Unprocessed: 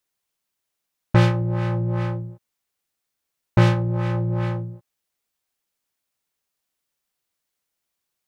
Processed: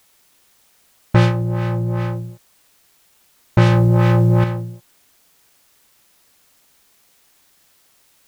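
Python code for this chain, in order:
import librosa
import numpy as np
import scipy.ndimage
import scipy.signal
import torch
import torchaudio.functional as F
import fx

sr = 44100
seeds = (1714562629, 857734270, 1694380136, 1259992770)

p1 = fx.quant_dither(x, sr, seeds[0], bits=8, dither='triangular')
p2 = x + F.gain(torch.from_numpy(p1), -9.0).numpy()
y = fx.env_flatten(p2, sr, amount_pct=100, at=(3.66, 4.44))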